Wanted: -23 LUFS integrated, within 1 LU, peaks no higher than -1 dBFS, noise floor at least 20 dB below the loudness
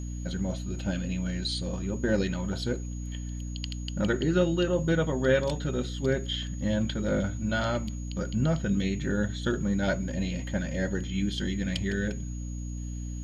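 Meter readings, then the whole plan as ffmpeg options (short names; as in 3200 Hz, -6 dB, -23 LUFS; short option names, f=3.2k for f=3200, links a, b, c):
hum 60 Hz; harmonics up to 300 Hz; hum level -33 dBFS; steady tone 6700 Hz; tone level -49 dBFS; loudness -29.5 LUFS; peak -11.0 dBFS; loudness target -23.0 LUFS
-> -af "bandreject=f=60:t=h:w=4,bandreject=f=120:t=h:w=4,bandreject=f=180:t=h:w=4,bandreject=f=240:t=h:w=4,bandreject=f=300:t=h:w=4"
-af "bandreject=f=6.7k:w=30"
-af "volume=6.5dB"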